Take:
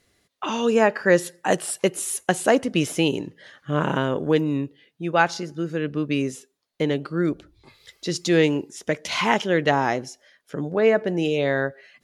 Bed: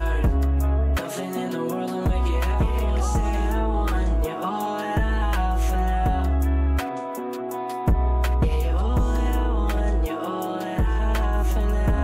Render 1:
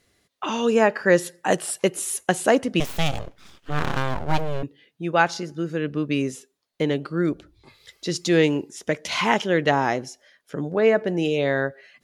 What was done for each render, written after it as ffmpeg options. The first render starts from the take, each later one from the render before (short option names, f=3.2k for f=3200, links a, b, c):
-filter_complex "[0:a]asettb=1/sr,asplit=3[a][b][c];[a]atrim=end=2.804[d];[b]atrim=start=2.8:end=4.63,asetpts=PTS-STARTPTS,afade=t=in:d=0.004:c=qsin,afade=t=out:st=1.826:d=0.004:c=qsin,aeval=exprs='abs(val(0))':c=same[e];[c]atrim=start=4.626[f];[d][e]acrossfade=d=0.004:c1=hsin:c2=qsin[g];[g][f]acrossfade=d=0.004:c1=qsin:c2=hsin"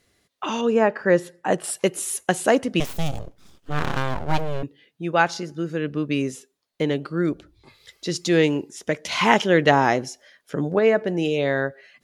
-filter_complex "[0:a]asettb=1/sr,asplit=3[a][b][c];[a]atrim=end=0.614[d];[b]atrim=start=0.61:end=1.64,asetpts=PTS-STARTPTS,afade=t=in:d=0.004:c=qsin,afade=t=out:st=1.026:d=0.004:c=qsin,highshelf=f=3k:g=-12[e];[c]atrim=start=1.636[f];[d][e]acrossfade=d=0.004:c1=hsin:c2=qsin[g];[g][f]acrossfade=d=0.004:c1=qsin:c2=hsin,asettb=1/sr,asplit=3[h][i][j];[h]atrim=end=2.934[k];[i]atrim=start=2.93:end=3.71,asetpts=PTS-STARTPTS,afade=t=in:d=0.004:c=qsin,afade=t=out:st=0.776:d=0.004:c=qsin,equalizer=f=2.1k:w=0.47:g=-10[l];[j]atrim=start=3.706[m];[k][l]acrossfade=d=0.004:c1=hsin:c2=qsin[n];[n][m]acrossfade=d=0.004:c1=qsin:c2=hsin,asplit=3[o][p][q];[o]atrim=end=9.212[r];[p]atrim=start=9.208:end=10.792,asetpts=PTS-STARTPTS,volume=3.5dB[s];[q]atrim=start=10.788[t];[r][s]acrossfade=d=0.004:c1=hsin:c2=hsin[u];[u][t]acrossfade=d=0.004:c1=hsin:c2=hsin"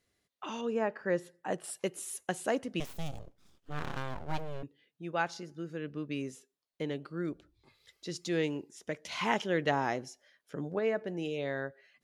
-af "volume=-13dB"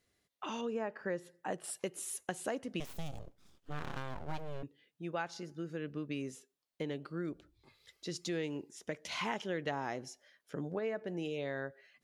-af "acompressor=threshold=-35dB:ratio=3"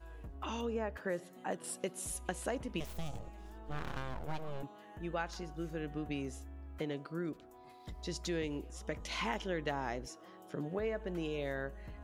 -filter_complex "[1:a]volume=-28dB[a];[0:a][a]amix=inputs=2:normalize=0"